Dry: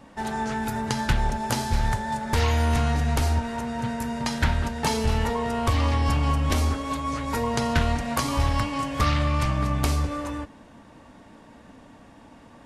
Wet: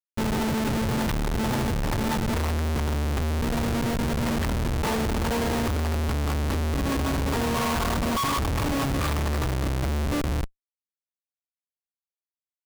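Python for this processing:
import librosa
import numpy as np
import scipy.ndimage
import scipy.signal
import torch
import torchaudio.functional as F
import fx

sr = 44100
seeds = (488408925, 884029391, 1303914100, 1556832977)

y = fx.cvsd(x, sr, bps=32000)
y = fx.peak_eq(y, sr, hz=1100.0, db=15.0, octaves=0.36, at=(7.54, 8.4))
y = fx.schmitt(y, sr, flips_db=-27.0)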